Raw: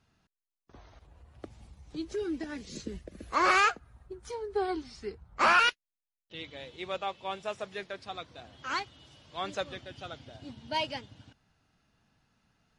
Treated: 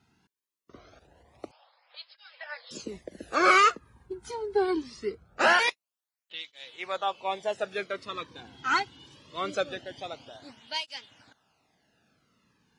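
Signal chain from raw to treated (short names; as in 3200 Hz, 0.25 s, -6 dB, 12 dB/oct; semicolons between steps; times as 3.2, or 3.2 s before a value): 1.51–2.71 brick-wall FIR band-pass 480–5300 Hz; 7.58–8.82 dynamic EQ 1400 Hz, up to +5 dB, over -46 dBFS, Q 0.91; tape flanging out of phase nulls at 0.23 Hz, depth 1.8 ms; gain +6.5 dB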